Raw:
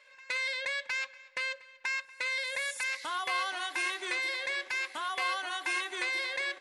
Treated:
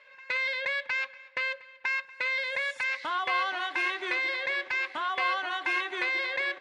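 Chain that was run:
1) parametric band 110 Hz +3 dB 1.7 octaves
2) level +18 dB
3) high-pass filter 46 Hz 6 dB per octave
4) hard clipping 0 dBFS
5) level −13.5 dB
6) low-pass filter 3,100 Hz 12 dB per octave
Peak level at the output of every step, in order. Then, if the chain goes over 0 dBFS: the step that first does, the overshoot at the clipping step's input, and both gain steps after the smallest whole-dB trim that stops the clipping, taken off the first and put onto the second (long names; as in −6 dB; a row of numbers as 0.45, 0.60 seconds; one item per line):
−19.5, −1.5, −1.5, −1.5, −15.0, −16.5 dBFS
no step passes full scale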